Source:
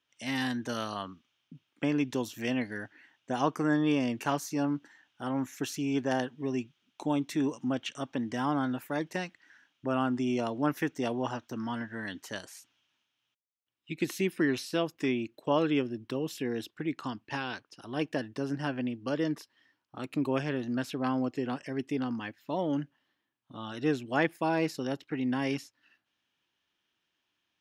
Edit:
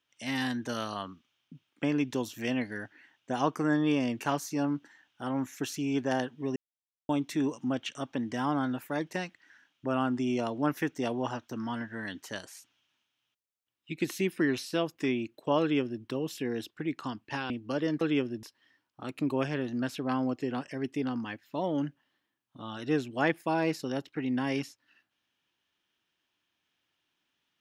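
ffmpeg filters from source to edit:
ffmpeg -i in.wav -filter_complex "[0:a]asplit=6[link_01][link_02][link_03][link_04][link_05][link_06];[link_01]atrim=end=6.56,asetpts=PTS-STARTPTS,afade=type=out:start_time=6.556:duration=0.004:curve=hsin[link_07];[link_02]atrim=start=6.56:end=7.09,asetpts=PTS-STARTPTS,volume=0[link_08];[link_03]atrim=start=7.09:end=17.502,asetpts=PTS-STARTPTS,afade=type=in:duration=0.004:curve=hsin[link_09];[link_04]atrim=start=18.868:end=19.382[link_10];[link_05]atrim=start=15.608:end=16.032[link_11];[link_06]atrim=start=19.378[link_12];[link_07][link_08][link_09]concat=n=3:v=0:a=1[link_13];[link_13][link_10]acrossfade=duration=0.004:curve1=hsin:curve2=hsin[link_14];[link_14][link_11]acrossfade=duration=0.004:curve1=hsin:curve2=hsin[link_15];[link_15][link_12]acrossfade=duration=0.004:curve1=hsin:curve2=hsin" out.wav

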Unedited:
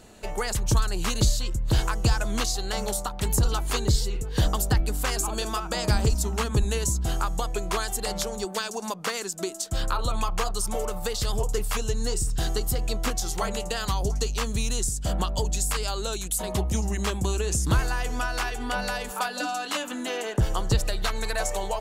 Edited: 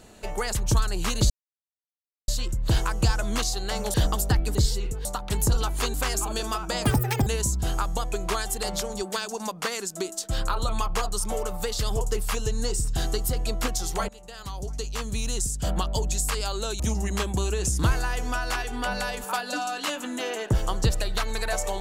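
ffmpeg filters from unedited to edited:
ffmpeg -i in.wav -filter_complex "[0:a]asplit=10[link_01][link_02][link_03][link_04][link_05][link_06][link_07][link_08][link_09][link_10];[link_01]atrim=end=1.3,asetpts=PTS-STARTPTS,afade=type=out:start_time=1.296:duration=0.004:curve=hsin,apad=pad_dur=0.98[link_11];[link_02]atrim=start=1.3:end=2.962,asetpts=PTS-STARTPTS,afade=type=in:duration=0.004:curve=hsin[link_12];[link_03]atrim=start=4.348:end=4.962[link_13];[link_04]atrim=start=3.848:end=4.352[link_14];[link_05]atrim=start=2.958:end=3.852[link_15];[link_06]atrim=start=4.958:end=5.874[link_16];[link_07]atrim=start=5.87:end=6.69,asetpts=PTS-STARTPTS,asetrate=86877,aresample=44100,atrim=end_sample=18356,asetpts=PTS-STARTPTS[link_17];[link_08]atrim=start=6.686:end=13.51,asetpts=PTS-STARTPTS,afade=type=out:start_time=6.82:duration=0.004:curve=hsin:silence=0.0841395[link_18];[link_09]atrim=start=13.51:end=16.222,asetpts=PTS-STARTPTS,afade=type=in:duration=1.44:silence=0.0841395[link_19];[link_10]atrim=start=16.668[link_20];[link_11][link_12]concat=n=2:v=0:a=1[link_21];[link_21][link_13]acrossfade=duration=0.004:curve1=hsin:curve2=hsin[link_22];[link_22][link_14]acrossfade=duration=0.004:curve1=hsin:curve2=hsin[link_23];[link_23][link_15]acrossfade=duration=0.004:curve1=hsin:curve2=hsin[link_24];[link_24][link_16]acrossfade=duration=0.004:curve1=hsin:curve2=hsin[link_25];[link_25][link_17]acrossfade=duration=0.004:curve1=hsin:curve2=hsin[link_26];[link_18][link_19]concat=n=2:v=0:a=1[link_27];[link_26][link_27]acrossfade=duration=0.004:curve1=hsin:curve2=hsin[link_28];[link_28][link_20]acrossfade=duration=0.004:curve1=hsin:curve2=hsin" out.wav

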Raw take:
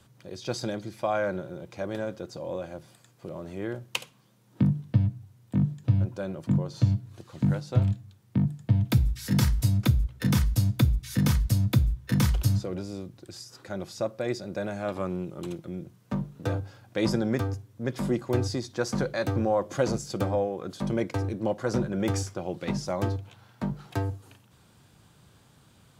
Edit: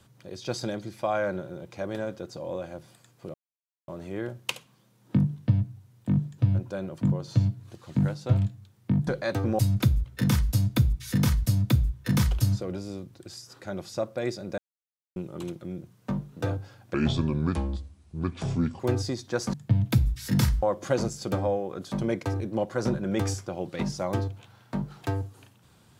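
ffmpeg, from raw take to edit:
ffmpeg -i in.wav -filter_complex "[0:a]asplit=10[link_01][link_02][link_03][link_04][link_05][link_06][link_07][link_08][link_09][link_10];[link_01]atrim=end=3.34,asetpts=PTS-STARTPTS,afade=type=out:start_time=3.336:duration=0.004:curve=hsin,apad=pad_dur=0.54[link_11];[link_02]atrim=start=3.34:end=8.532,asetpts=PTS-STARTPTS,afade=type=in:duration=0.004:curve=hsin[link_12];[link_03]atrim=start=18.988:end=19.512[link_13];[link_04]atrim=start=9.618:end=14.61,asetpts=PTS-STARTPTS,afade=type=out:start_time=4.988:duration=0.004:curve=hsin[link_14];[link_05]atrim=start=14.61:end=15.19,asetpts=PTS-STARTPTS,volume=0[link_15];[link_06]atrim=start=15.19:end=16.974,asetpts=PTS-STARTPTS,afade=type=in:duration=0.004:curve=hsin[link_16];[link_07]atrim=start=16.97:end=18.25,asetpts=PTS-STARTPTS,asetrate=30429,aresample=44100[link_17];[link_08]atrim=start=18.246:end=18.992[link_18];[link_09]atrim=start=8.528:end=9.622[link_19];[link_10]atrim=start=19.508[link_20];[link_11][link_12]concat=n=2:v=0:a=1[link_21];[link_21][link_13]acrossfade=duration=0.004:curve1=hsin:curve2=hsin[link_22];[link_14][link_15][link_16]concat=n=3:v=0:a=1[link_23];[link_22][link_23]acrossfade=duration=0.004:curve1=hsin:curve2=hsin[link_24];[link_24][link_17]acrossfade=duration=0.004:curve1=hsin:curve2=hsin[link_25];[link_25][link_18]acrossfade=duration=0.004:curve1=hsin:curve2=hsin[link_26];[link_26][link_19]acrossfade=duration=0.004:curve1=hsin:curve2=hsin[link_27];[link_27][link_20]acrossfade=duration=0.004:curve1=hsin:curve2=hsin" out.wav

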